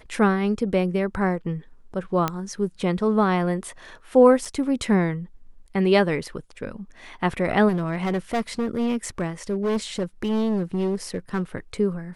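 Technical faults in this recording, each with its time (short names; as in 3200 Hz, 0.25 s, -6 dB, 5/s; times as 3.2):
2.28 pop -9 dBFS
4.45 gap 4.5 ms
7.68–11.42 clipped -20 dBFS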